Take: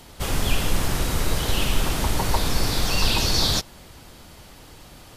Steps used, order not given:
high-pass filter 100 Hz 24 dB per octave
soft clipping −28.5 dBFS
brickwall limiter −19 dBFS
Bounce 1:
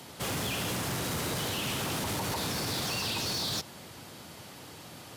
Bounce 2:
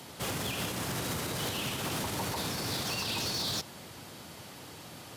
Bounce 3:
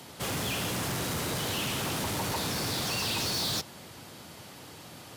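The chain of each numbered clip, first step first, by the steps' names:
high-pass filter, then brickwall limiter, then soft clipping
brickwall limiter, then high-pass filter, then soft clipping
high-pass filter, then soft clipping, then brickwall limiter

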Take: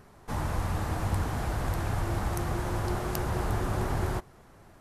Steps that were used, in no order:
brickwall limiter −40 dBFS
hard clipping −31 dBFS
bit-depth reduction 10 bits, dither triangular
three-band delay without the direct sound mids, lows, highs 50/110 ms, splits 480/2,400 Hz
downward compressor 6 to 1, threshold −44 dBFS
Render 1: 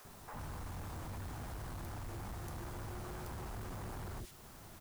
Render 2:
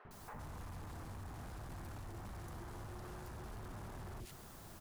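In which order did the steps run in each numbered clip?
three-band delay without the direct sound, then hard clipping, then downward compressor, then brickwall limiter, then bit-depth reduction
hard clipping, then bit-depth reduction, then three-band delay without the direct sound, then brickwall limiter, then downward compressor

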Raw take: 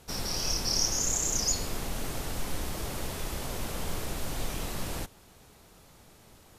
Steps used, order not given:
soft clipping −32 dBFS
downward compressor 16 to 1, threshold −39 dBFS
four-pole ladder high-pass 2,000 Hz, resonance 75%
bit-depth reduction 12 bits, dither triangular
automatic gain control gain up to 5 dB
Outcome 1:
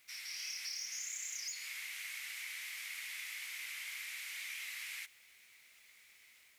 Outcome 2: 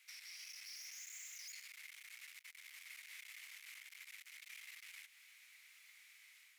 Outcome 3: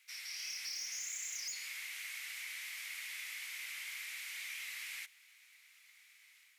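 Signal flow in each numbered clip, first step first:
four-pole ladder high-pass, then soft clipping, then automatic gain control, then downward compressor, then bit-depth reduction
bit-depth reduction, then automatic gain control, then soft clipping, then downward compressor, then four-pole ladder high-pass
automatic gain control, then bit-depth reduction, then four-pole ladder high-pass, then soft clipping, then downward compressor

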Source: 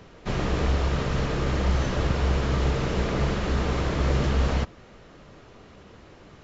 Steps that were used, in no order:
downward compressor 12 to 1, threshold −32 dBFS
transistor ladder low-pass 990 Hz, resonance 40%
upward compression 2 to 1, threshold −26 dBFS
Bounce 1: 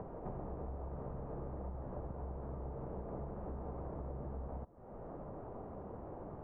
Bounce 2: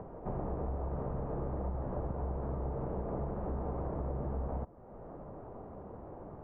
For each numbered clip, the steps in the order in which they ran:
upward compression, then downward compressor, then transistor ladder low-pass
upward compression, then transistor ladder low-pass, then downward compressor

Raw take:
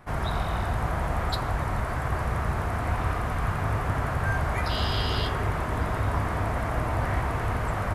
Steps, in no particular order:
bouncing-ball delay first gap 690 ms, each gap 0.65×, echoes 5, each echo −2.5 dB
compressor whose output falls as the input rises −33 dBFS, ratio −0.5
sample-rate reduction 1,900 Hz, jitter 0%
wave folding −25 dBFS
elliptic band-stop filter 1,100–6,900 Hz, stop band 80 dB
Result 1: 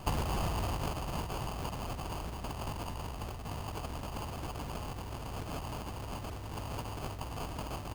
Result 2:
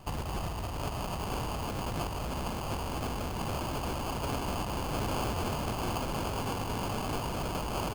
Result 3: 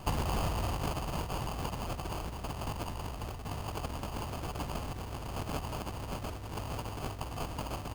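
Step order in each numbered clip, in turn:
wave folding, then bouncing-ball delay, then compressor whose output falls as the input rises, then elliptic band-stop filter, then sample-rate reduction
bouncing-ball delay, then wave folding, then elliptic band-stop filter, then sample-rate reduction, then compressor whose output falls as the input rises
elliptic band-stop filter, then wave folding, then bouncing-ball delay, then compressor whose output falls as the input rises, then sample-rate reduction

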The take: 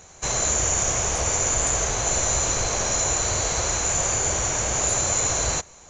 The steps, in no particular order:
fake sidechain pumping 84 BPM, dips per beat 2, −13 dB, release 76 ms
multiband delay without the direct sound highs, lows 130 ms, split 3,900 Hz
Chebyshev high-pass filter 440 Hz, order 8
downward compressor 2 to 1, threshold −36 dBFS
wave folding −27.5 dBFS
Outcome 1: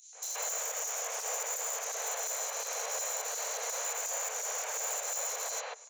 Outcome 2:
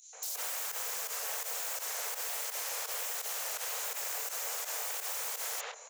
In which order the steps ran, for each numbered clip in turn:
downward compressor, then wave folding, then Chebyshev high-pass filter, then fake sidechain pumping, then multiband delay without the direct sound
wave folding, then multiband delay without the direct sound, then fake sidechain pumping, then Chebyshev high-pass filter, then downward compressor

